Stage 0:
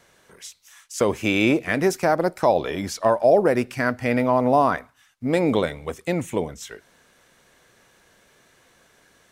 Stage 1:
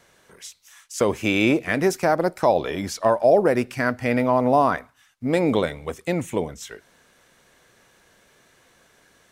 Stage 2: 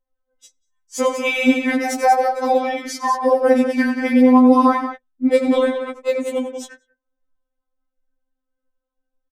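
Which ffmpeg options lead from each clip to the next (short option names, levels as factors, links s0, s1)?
-af anull
-af "aecho=1:1:90.38|186.6:0.316|0.398,anlmdn=6.31,afftfilt=real='re*3.46*eq(mod(b,12),0)':imag='im*3.46*eq(mod(b,12),0)':win_size=2048:overlap=0.75,volume=1.68"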